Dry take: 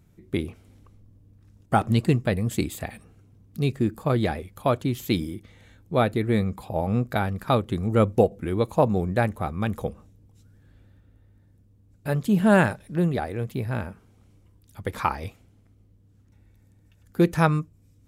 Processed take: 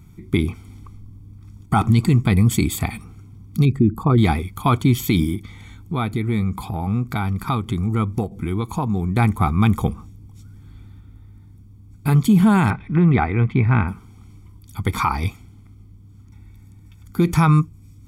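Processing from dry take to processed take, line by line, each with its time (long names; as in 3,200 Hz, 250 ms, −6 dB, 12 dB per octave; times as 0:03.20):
0:03.65–0:04.18: spectral envelope exaggerated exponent 1.5
0:05.35–0:09.17: downward compressor 2 to 1, threshold −36 dBFS
0:12.70–0:13.88: low-pass with resonance 2,100 Hz, resonance Q 1.7
whole clip: comb filter 0.9 ms, depth 94%; brickwall limiter −15 dBFS; level +7.5 dB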